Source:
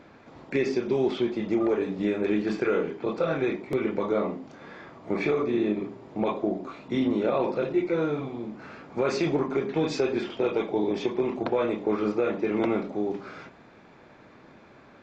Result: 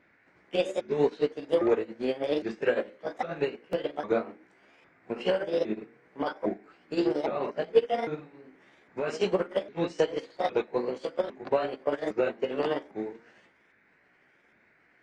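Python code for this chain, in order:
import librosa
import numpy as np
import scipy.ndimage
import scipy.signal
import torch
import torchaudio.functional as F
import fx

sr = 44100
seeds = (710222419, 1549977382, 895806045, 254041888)

y = fx.pitch_ramps(x, sr, semitones=7.0, every_ms=807)
y = fx.dmg_noise_band(y, sr, seeds[0], low_hz=1400.0, high_hz=2300.0, level_db=-51.0)
y = fx.upward_expand(y, sr, threshold_db=-34.0, expansion=2.5)
y = y * librosa.db_to_amplitude(5.5)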